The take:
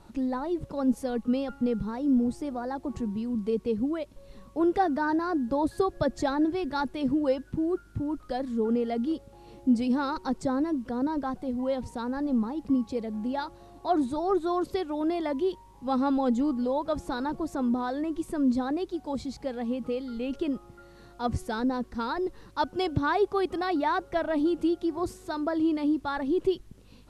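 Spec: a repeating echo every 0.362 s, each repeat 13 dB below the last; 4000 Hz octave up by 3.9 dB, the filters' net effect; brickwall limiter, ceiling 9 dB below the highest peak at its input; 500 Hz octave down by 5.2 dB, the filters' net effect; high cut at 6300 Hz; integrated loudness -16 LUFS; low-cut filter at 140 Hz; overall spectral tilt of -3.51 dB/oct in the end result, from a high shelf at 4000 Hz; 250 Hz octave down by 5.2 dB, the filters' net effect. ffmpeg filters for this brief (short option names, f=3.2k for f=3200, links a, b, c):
-af "highpass=140,lowpass=6.3k,equalizer=f=250:t=o:g=-4,equalizer=f=500:t=o:g=-5.5,highshelf=f=4k:g=-6,equalizer=f=4k:t=o:g=8.5,alimiter=limit=-24dB:level=0:latency=1,aecho=1:1:362|724|1086:0.224|0.0493|0.0108,volume=18dB"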